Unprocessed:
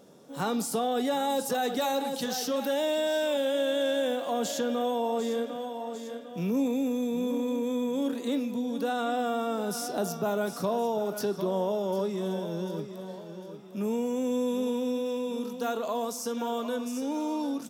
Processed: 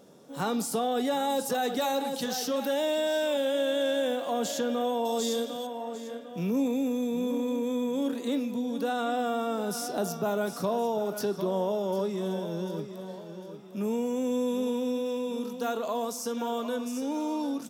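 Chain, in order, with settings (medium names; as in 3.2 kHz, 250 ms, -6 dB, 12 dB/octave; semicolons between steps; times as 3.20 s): 5.05–5.67 s: resonant high shelf 3.1 kHz +9.5 dB, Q 1.5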